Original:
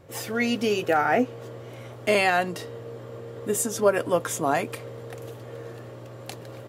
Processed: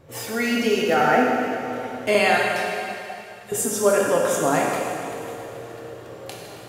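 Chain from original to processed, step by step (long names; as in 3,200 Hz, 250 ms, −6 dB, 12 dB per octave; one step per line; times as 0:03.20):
0:02.37–0:03.52: guitar amp tone stack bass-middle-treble 10-0-10
dense smooth reverb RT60 2.7 s, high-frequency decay 0.95×, pre-delay 0 ms, DRR −2.5 dB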